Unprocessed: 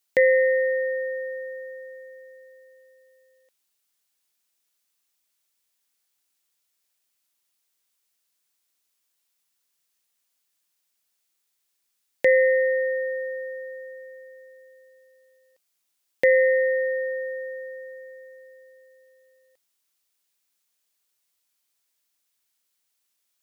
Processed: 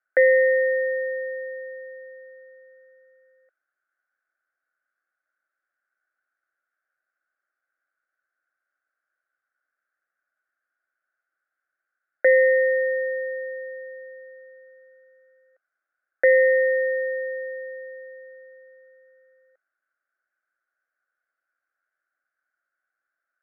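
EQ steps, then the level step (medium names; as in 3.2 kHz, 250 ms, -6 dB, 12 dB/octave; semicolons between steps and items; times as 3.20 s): ladder high-pass 360 Hz, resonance 50%; resonant low-pass 1.5 kHz, resonance Q 9.4; static phaser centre 640 Hz, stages 8; +7.0 dB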